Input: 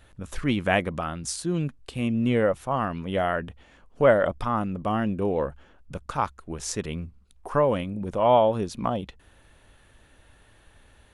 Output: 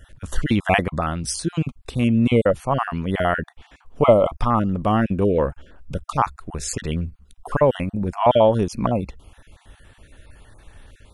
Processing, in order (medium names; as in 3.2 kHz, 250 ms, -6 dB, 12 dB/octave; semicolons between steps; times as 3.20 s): random holes in the spectrogram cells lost 25%; bass shelf 110 Hz +6.5 dB; trim +6 dB